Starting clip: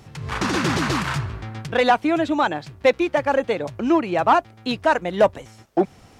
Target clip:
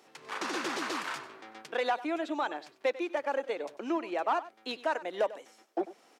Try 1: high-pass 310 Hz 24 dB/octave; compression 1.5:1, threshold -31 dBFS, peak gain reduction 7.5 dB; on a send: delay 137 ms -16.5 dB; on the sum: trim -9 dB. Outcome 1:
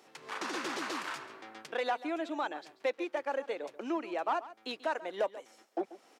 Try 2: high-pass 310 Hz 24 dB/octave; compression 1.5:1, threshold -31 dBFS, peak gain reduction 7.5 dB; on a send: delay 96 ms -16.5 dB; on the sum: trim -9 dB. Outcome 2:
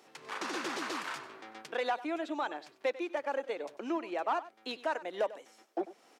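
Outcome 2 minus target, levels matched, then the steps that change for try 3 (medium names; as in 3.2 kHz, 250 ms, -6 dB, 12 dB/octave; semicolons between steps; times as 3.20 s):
compression: peak gain reduction +2.5 dB
change: compression 1.5:1, threshold -23 dBFS, peak gain reduction 5 dB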